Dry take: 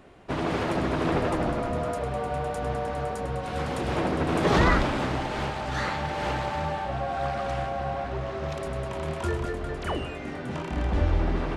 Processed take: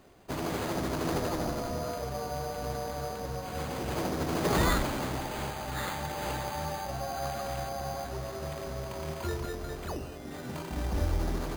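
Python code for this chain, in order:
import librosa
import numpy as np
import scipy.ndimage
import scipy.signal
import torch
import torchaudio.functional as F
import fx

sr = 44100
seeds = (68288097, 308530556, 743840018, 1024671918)

y = fx.spacing_loss(x, sr, db_at_10k=30, at=(9.86, 10.31))
y = np.repeat(y[::8], 8)[:len(y)]
y = y * librosa.db_to_amplitude(-5.5)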